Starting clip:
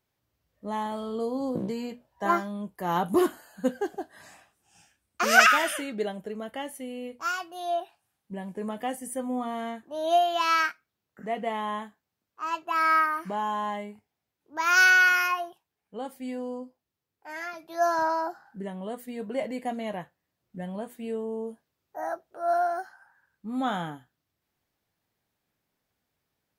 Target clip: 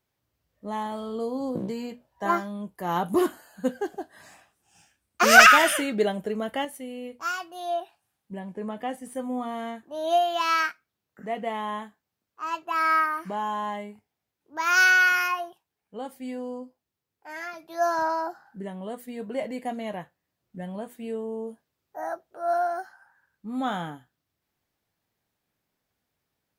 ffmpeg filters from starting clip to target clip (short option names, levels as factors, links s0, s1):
-filter_complex "[0:a]acrossover=split=3600[s0][s1];[s1]acrusher=bits=4:mode=log:mix=0:aa=0.000001[s2];[s0][s2]amix=inputs=2:normalize=0,asettb=1/sr,asplit=3[s3][s4][s5];[s3]atrim=end=5.214[s6];[s4]atrim=start=5.21:end=6.65,asetpts=PTS-STARTPTS,afade=t=in:d=0.004:c=qsin,afade=t=out:st=1.436:d=0.004:c=qsin,acontrast=63[s7];[s5]atrim=start=6.646[s8];[s6][s7]acrossfade=d=0.004:c1=hsin:c2=qsin[s9];[s9][s8]acrossfade=d=0.004:c1=qsin:c2=hsin,asettb=1/sr,asplit=3[s10][s11][s12];[s10]atrim=end=8.394[s13];[s11]atrim=start=8.39:end=9.15,asetpts=PTS-STARTPTS,afade=t=in:d=0.004:c=qsin,afade=t=out:st=0.756:d=0.004:c=qsin,highshelf=f=6400:g=-11.5[s14];[s12]atrim=start=9.146[s15];[s13][s14]acrossfade=d=0.004:c1=hsin:c2=qsin[s16];[s16][s15]acrossfade=d=0.004:c1=qsin:c2=hsin"